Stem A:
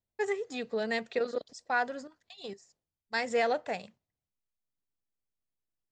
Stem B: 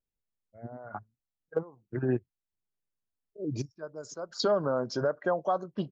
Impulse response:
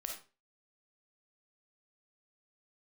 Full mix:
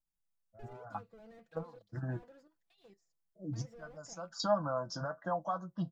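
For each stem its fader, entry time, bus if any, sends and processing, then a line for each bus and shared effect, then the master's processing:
−11.5 dB, 0.40 s, no send, high-shelf EQ 6,300 Hz −7.5 dB; slew-rate limiting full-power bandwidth 8.5 Hz; automatic ducking −7 dB, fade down 1.10 s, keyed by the second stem
+2.0 dB, 0.00 s, no send, notch filter 4,200 Hz, Q 10; flanger 1.1 Hz, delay 9.5 ms, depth 2.4 ms, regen +55%; phaser with its sweep stopped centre 990 Hz, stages 4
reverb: not used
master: comb filter 6 ms, depth 50%

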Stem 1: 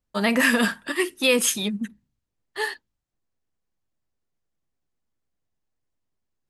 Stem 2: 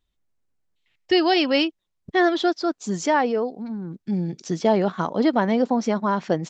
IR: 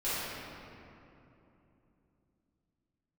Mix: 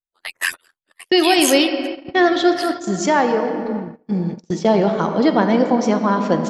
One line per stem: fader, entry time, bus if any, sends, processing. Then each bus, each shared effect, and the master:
+2.5 dB, 0.00 s, no send, harmonic-percussive split with one part muted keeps percussive; parametric band 530 Hz −3 dB 0.25 octaves; ring modulation 43 Hz
+2.5 dB, 0.00 s, send −13 dB, no processing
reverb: on, RT60 3.0 s, pre-delay 4 ms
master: noise gate −24 dBFS, range −33 dB; high-shelf EQ 6,700 Hz +4.5 dB

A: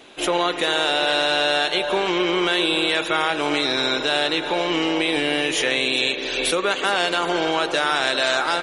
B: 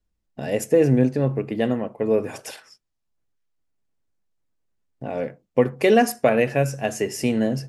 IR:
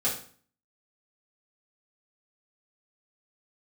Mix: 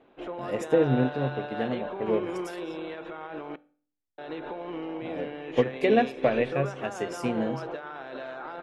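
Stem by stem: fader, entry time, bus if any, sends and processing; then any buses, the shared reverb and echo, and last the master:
0.0 dB, 0.00 s, muted 0:03.56–0:04.18, send −21.5 dB, Bessel low-pass filter 1,000 Hz, order 2; brickwall limiter −22 dBFS, peak gain reduction 11 dB
−4.5 dB, 0.00 s, no send, treble cut that deepens with the level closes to 2,500 Hz, closed at −13 dBFS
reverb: on, RT60 0.45 s, pre-delay 3 ms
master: expander for the loud parts 1.5 to 1, over −37 dBFS

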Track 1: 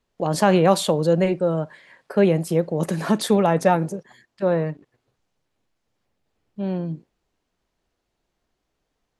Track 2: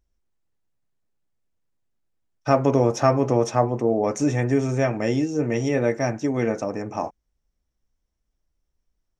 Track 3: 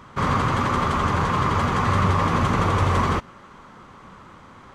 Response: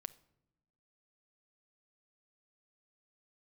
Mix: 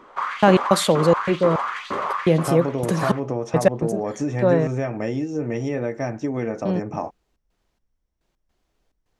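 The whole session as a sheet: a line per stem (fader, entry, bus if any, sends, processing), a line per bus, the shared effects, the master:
+2.5 dB, 0.00 s, no bus, no send, gate pattern "...x.xxx.xx" 106 BPM −60 dB
+1.0 dB, 0.00 s, bus A, no send, no processing
−2.5 dB, 0.00 s, bus A, no send, auto-filter high-pass saw up 2.1 Hz 290–4,300 Hz; automatic ducking −6 dB, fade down 0.30 s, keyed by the second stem
bus A: 0.0 dB, high-shelf EQ 3,800 Hz −8.5 dB; downward compressor, threshold −21 dBFS, peak gain reduction 10 dB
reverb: not used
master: no processing

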